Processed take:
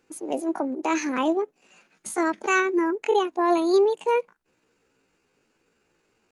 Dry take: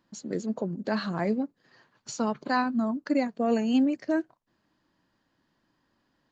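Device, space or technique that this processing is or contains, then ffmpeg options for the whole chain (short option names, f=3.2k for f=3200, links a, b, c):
chipmunk voice: -filter_complex "[0:a]asettb=1/sr,asplit=3[a][b][c];[a]atrim=end=2.604[d];[b]atrim=start=2.6:end=3.58,asetpts=PTS-STARTPTS,afade=t=in:d=0.004:c=qsin,afade=t=out:st=0.976:d=0.004:c=qsin,acrossover=split=3500[e][f];[f]acompressor=threshold=-53dB:ratio=4:attack=1:release=60[g];[e][g]amix=inputs=2:normalize=0[h];[c]atrim=start=3.576[i];[d][h]acrossfade=d=0.004:c1=hsin:c2=qsin[j];[j][i]acrossfade=d=0.004:c1=qsin:c2=hsin,asetrate=66075,aresample=44100,atempo=0.66742,volume=4dB"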